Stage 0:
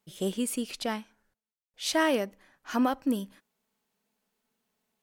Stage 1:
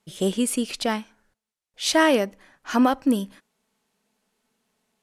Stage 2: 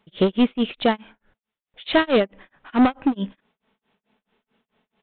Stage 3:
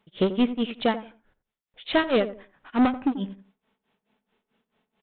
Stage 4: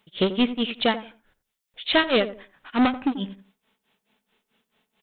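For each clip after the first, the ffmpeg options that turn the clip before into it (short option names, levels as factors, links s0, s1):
-af "lowpass=f=12000:w=0.5412,lowpass=f=12000:w=1.3066,volume=2.24"
-af "aresample=8000,asoftclip=type=hard:threshold=0.106,aresample=44100,tremolo=f=4.6:d=0.99,volume=2.66"
-filter_complex "[0:a]asplit=2[s0][s1];[s1]adelay=87,lowpass=f=800:p=1,volume=0.282,asplit=2[s2][s3];[s3]adelay=87,lowpass=f=800:p=1,volume=0.27,asplit=2[s4][s5];[s5]adelay=87,lowpass=f=800:p=1,volume=0.27[s6];[s0][s2][s4][s6]amix=inputs=4:normalize=0,volume=0.631"
-af "highshelf=f=2300:g=12"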